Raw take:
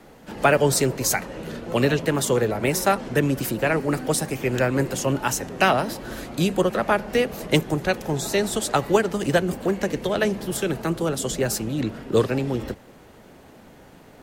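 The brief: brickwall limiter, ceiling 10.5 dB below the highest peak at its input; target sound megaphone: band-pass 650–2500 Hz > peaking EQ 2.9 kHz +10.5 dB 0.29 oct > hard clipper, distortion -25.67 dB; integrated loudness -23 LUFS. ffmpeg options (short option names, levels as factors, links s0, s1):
-af "alimiter=limit=0.2:level=0:latency=1,highpass=650,lowpass=2500,equalizer=f=2900:t=o:w=0.29:g=10.5,asoftclip=type=hard:threshold=0.133,volume=2.66"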